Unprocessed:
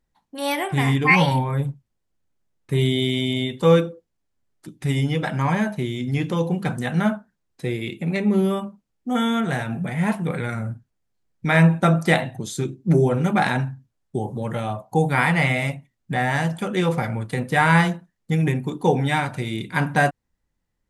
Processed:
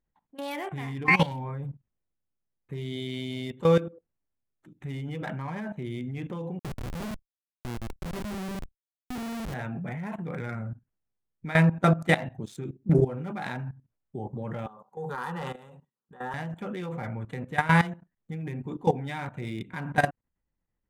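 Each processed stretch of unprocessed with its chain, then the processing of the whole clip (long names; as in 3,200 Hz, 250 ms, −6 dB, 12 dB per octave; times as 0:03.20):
0:06.59–0:09.54: repeating echo 88 ms, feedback 56%, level −19 dB + comparator with hysteresis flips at −21.5 dBFS
0:14.66–0:16.34: high-pass filter 270 Hz + phaser with its sweep stopped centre 440 Hz, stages 8 + transient designer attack −12 dB, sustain +4 dB
whole clip: adaptive Wiener filter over 9 samples; output level in coarse steps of 16 dB; level −2 dB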